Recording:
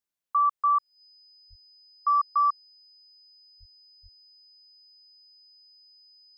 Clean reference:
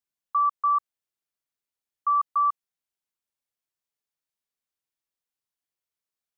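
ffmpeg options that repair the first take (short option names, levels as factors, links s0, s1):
-filter_complex "[0:a]bandreject=f=5000:w=30,asplit=3[s0][s1][s2];[s0]afade=t=out:st=1.49:d=0.02[s3];[s1]highpass=f=140:w=0.5412,highpass=f=140:w=1.3066,afade=t=in:st=1.49:d=0.02,afade=t=out:st=1.61:d=0.02[s4];[s2]afade=t=in:st=1.61:d=0.02[s5];[s3][s4][s5]amix=inputs=3:normalize=0,asplit=3[s6][s7][s8];[s6]afade=t=out:st=3.59:d=0.02[s9];[s7]highpass=f=140:w=0.5412,highpass=f=140:w=1.3066,afade=t=in:st=3.59:d=0.02,afade=t=out:st=3.71:d=0.02[s10];[s8]afade=t=in:st=3.71:d=0.02[s11];[s9][s10][s11]amix=inputs=3:normalize=0,asplit=3[s12][s13][s14];[s12]afade=t=out:st=4.02:d=0.02[s15];[s13]highpass=f=140:w=0.5412,highpass=f=140:w=1.3066,afade=t=in:st=4.02:d=0.02,afade=t=out:st=4.14:d=0.02[s16];[s14]afade=t=in:st=4.14:d=0.02[s17];[s15][s16][s17]amix=inputs=3:normalize=0"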